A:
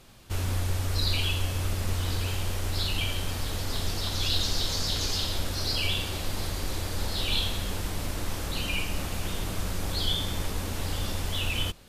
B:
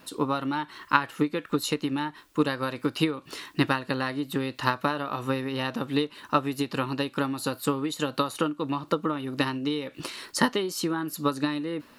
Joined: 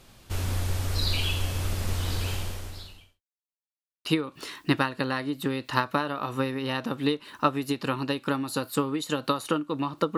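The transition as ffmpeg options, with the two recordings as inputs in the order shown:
-filter_complex "[0:a]apad=whole_dur=10.17,atrim=end=10.17,asplit=2[s0][s1];[s0]atrim=end=3.22,asetpts=PTS-STARTPTS,afade=t=out:st=2.33:d=0.89:c=qua[s2];[s1]atrim=start=3.22:end=4.05,asetpts=PTS-STARTPTS,volume=0[s3];[1:a]atrim=start=2.95:end=9.07,asetpts=PTS-STARTPTS,afade=t=in:d=0.004:c=hsin[s4];[s2][s3][s4]concat=n=3:v=0:a=1"

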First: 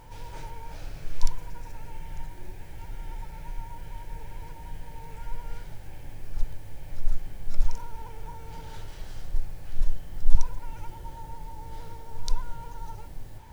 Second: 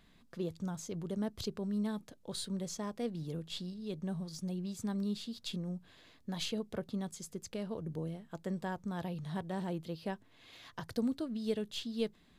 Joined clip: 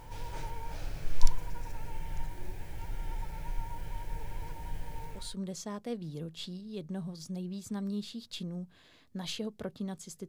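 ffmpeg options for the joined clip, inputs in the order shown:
-filter_complex "[0:a]apad=whole_dur=10.28,atrim=end=10.28,atrim=end=5.37,asetpts=PTS-STARTPTS[s0];[1:a]atrim=start=2.16:end=7.41,asetpts=PTS-STARTPTS[s1];[s0][s1]acrossfade=d=0.34:c1=tri:c2=tri"

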